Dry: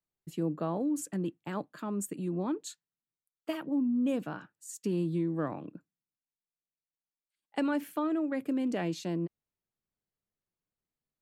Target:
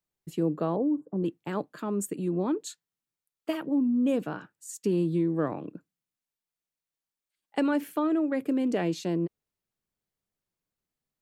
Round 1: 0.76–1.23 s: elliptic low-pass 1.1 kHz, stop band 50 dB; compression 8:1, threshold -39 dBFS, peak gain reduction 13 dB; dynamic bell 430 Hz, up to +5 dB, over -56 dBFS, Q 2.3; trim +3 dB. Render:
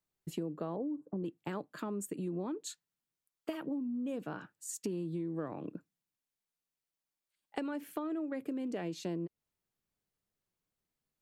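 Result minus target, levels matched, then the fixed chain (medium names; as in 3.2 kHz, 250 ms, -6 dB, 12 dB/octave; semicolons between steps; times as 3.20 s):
compression: peak gain reduction +13 dB
0.76–1.23 s: elliptic low-pass 1.1 kHz, stop band 50 dB; dynamic bell 430 Hz, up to +5 dB, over -56 dBFS, Q 2.3; trim +3 dB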